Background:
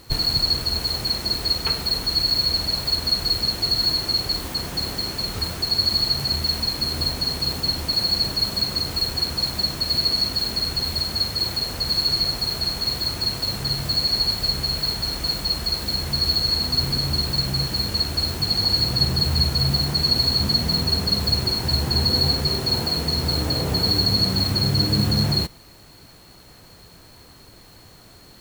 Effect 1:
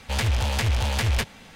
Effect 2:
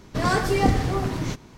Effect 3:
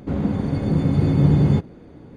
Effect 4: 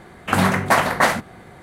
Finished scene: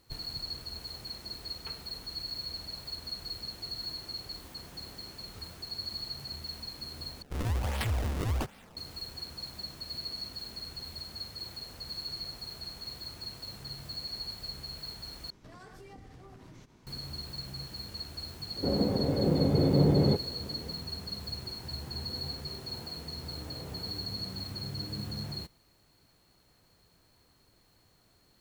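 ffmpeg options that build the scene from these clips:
ffmpeg -i bed.wav -i cue0.wav -i cue1.wav -i cue2.wav -filter_complex "[0:a]volume=-18dB[link_01];[1:a]acrusher=samples=31:mix=1:aa=0.000001:lfo=1:lforange=49.6:lforate=1.3[link_02];[2:a]acompressor=threshold=-36dB:ratio=6:attack=3.2:release=140:knee=1:detection=peak[link_03];[3:a]equalizer=frequency=510:width=0.95:gain=13.5[link_04];[link_01]asplit=3[link_05][link_06][link_07];[link_05]atrim=end=7.224[link_08];[link_02]atrim=end=1.55,asetpts=PTS-STARTPTS,volume=-7.5dB[link_09];[link_06]atrim=start=8.766:end=15.304[link_10];[link_03]atrim=end=1.57,asetpts=PTS-STARTPTS,volume=-12.5dB[link_11];[link_07]atrim=start=16.866[link_12];[link_04]atrim=end=2.16,asetpts=PTS-STARTPTS,volume=-11dB,afade=type=in:duration=0.004:curve=hsin,afade=type=out:start_time=2.156:duration=0.004:curve=hsin,adelay=18560[link_13];[link_08][link_09]acrossfade=duration=0.004:curve1=hsin:curve2=hsin[link_14];[link_14][link_10]acrossfade=duration=0.004:curve1=hsin:curve2=hsin[link_15];[link_15][link_11]acrossfade=duration=0.004:curve1=hsin:curve2=hsin[link_16];[link_16][link_12]acrossfade=duration=0.004:curve1=hsin:curve2=hsin[link_17];[link_17][link_13]amix=inputs=2:normalize=0" out.wav

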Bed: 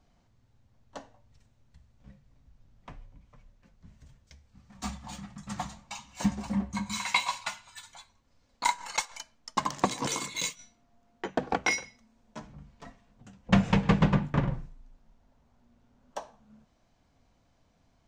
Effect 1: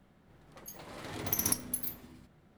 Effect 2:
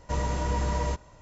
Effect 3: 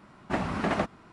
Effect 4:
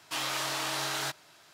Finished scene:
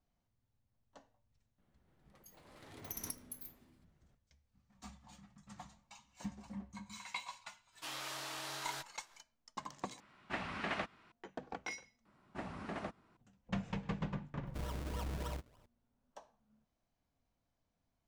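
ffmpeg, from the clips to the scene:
ffmpeg -i bed.wav -i cue0.wav -i cue1.wav -i cue2.wav -i cue3.wav -filter_complex "[3:a]asplit=2[link_01][link_02];[0:a]volume=-16.5dB[link_03];[link_01]equalizer=frequency=2700:width_type=o:width=2.5:gain=12.5[link_04];[2:a]acrusher=samples=37:mix=1:aa=0.000001:lfo=1:lforange=37:lforate=3.3[link_05];[link_03]asplit=3[link_06][link_07][link_08];[link_06]atrim=end=10.004[link_09];[link_04]atrim=end=1.12,asetpts=PTS-STARTPTS,volume=-16dB[link_10];[link_07]atrim=start=11.116:end=12.054[link_11];[link_02]atrim=end=1.12,asetpts=PTS-STARTPTS,volume=-15.5dB[link_12];[link_08]atrim=start=13.166[link_13];[1:a]atrim=end=2.57,asetpts=PTS-STARTPTS,volume=-13.5dB,afade=type=in:duration=0.004:curve=hsin,afade=type=out:start_time=2.566:duration=0.004:curve=hsin,adelay=1580[link_14];[4:a]atrim=end=1.53,asetpts=PTS-STARTPTS,volume=-11.5dB,afade=type=in:duration=0.05,afade=type=out:start_time=1.48:duration=0.05,adelay=7710[link_15];[link_05]atrim=end=1.21,asetpts=PTS-STARTPTS,volume=-13.5dB,afade=type=in:duration=0.004:curve=hsin,afade=type=out:start_time=1.206:duration=0.004:curve=hsin,adelay=14450[link_16];[link_09][link_10]acrossfade=duration=0.004:curve1=hsin:curve2=hsin[link_17];[link_17][link_11]acrossfade=duration=0.004:curve1=hsin:curve2=hsin[link_18];[link_18][link_12]acrossfade=duration=0.004:curve1=hsin:curve2=hsin[link_19];[link_19][link_13]acrossfade=duration=0.004:curve1=hsin:curve2=hsin[link_20];[link_20][link_14][link_15][link_16]amix=inputs=4:normalize=0" out.wav

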